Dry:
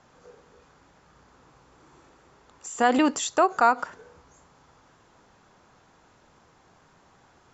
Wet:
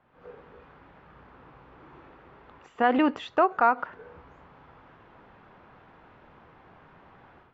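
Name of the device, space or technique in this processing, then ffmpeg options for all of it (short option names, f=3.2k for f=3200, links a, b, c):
action camera in a waterproof case: -af "lowpass=f=2.9k:w=0.5412,lowpass=f=2.9k:w=1.3066,dynaudnorm=f=130:g=3:m=13dB,volume=-8dB" -ar 44100 -c:a aac -b:a 64k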